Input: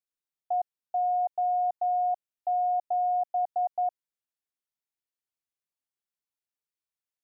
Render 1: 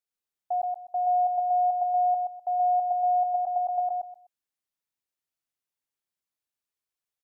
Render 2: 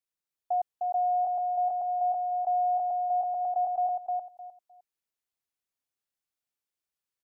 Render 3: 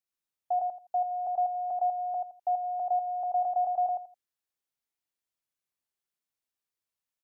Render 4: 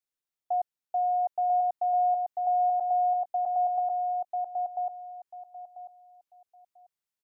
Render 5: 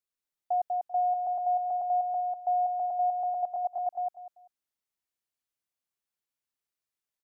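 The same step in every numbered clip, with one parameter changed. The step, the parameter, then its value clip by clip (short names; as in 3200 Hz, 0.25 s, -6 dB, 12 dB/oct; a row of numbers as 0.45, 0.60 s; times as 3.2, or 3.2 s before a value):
feedback echo, time: 126, 306, 84, 992, 195 ms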